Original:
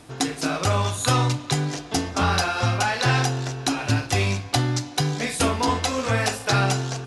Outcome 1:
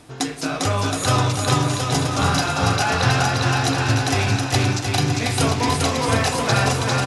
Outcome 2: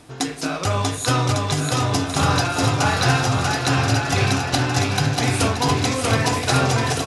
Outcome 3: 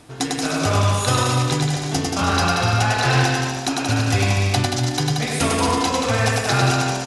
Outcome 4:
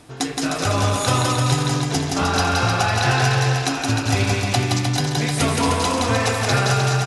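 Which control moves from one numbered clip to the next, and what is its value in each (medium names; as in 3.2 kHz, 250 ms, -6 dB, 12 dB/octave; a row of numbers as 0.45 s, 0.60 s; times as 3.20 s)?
bouncing-ball echo, first gap: 400 ms, 640 ms, 100 ms, 170 ms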